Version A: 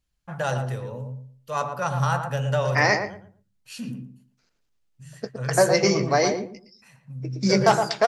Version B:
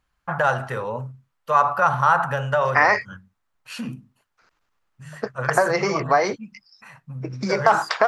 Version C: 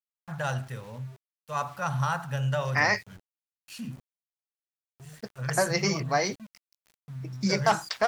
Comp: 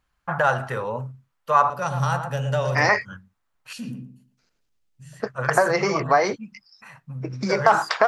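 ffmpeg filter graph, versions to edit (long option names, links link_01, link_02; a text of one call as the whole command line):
ffmpeg -i take0.wav -i take1.wav -filter_complex "[0:a]asplit=2[link_01][link_02];[1:a]asplit=3[link_03][link_04][link_05];[link_03]atrim=end=1.702[link_06];[link_01]atrim=start=1.698:end=2.892[link_07];[link_04]atrim=start=2.888:end=3.732[link_08];[link_02]atrim=start=3.728:end=5.202[link_09];[link_05]atrim=start=5.198[link_10];[link_06][link_07]acrossfade=duration=0.004:curve1=hsin:curve2=hsin[link_11];[link_11][link_08]acrossfade=duration=0.004:curve1=hsin:curve2=hsin[link_12];[link_12][link_09]acrossfade=duration=0.004:curve1=hsin:curve2=hsin[link_13];[link_13][link_10]acrossfade=duration=0.004:curve1=hsin:curve2=hsin" out.wav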